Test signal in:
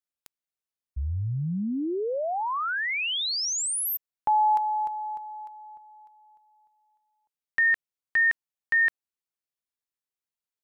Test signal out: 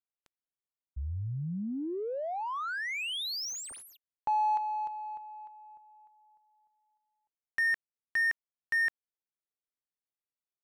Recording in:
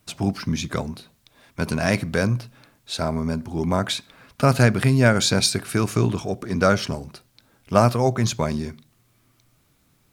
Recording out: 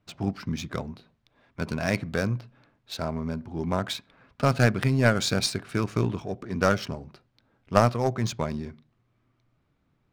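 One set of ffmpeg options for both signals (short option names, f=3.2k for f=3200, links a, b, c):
-af "adynamicsmooth=sensitivity=5.5:basefreq=2.6k,aeval=exprs='0.794*(cos(1*acos(clip(val(0)/0.794,-1,1)))-cos(1*PI/2))+0.0355*(cos(2*acos(clip(val(0)/0.794,-1,1)))-cos(2*PI/2))+0.112*(cos(3*acos(clip(val(0)/0.794,-1,1)))-cos(3*PI/2))+0.0501*(cos(6*acos(clip(val(0)/0.794,-1,1)))-cos(6*PI/2))+0.0316*(cos(8*acos(clip(val(0)/0.794,-1,1)))-cos(8*PI/2))':c=same,volume=-1.5dB"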